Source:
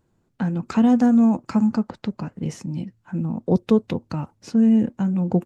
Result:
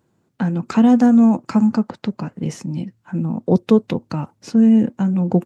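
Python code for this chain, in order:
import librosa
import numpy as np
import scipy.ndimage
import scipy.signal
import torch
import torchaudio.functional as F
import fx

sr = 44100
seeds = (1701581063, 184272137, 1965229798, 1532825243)

y = scipy.signal.sosfilt(scipy.signal.butter(2, 110.0, 'highpass', fs=sr, output='sos'), x)
y = y * 10.0 ** (4.0 / 20.0)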